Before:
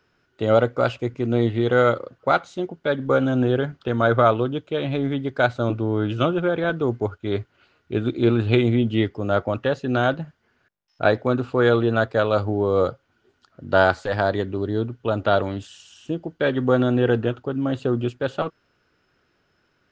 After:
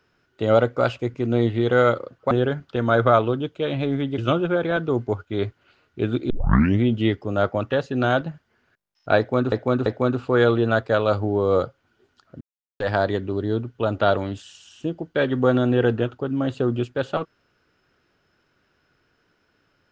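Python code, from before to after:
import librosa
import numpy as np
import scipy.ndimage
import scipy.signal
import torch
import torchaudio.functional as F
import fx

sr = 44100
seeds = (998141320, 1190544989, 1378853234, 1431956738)

y = fx.edit(x, sr, fx.cut(start_s=2.31, length_s=1.12),
    fx.cut(start_s=5.3, length_s=0.81),
    fx.tape_start(start_s=8.23, length_s=0.51),
    fx.repeat(start_s=11.11, length_s=0.34, count=3),
    fx.silence(start_s=13.66, length_s=0.39), tone=tone)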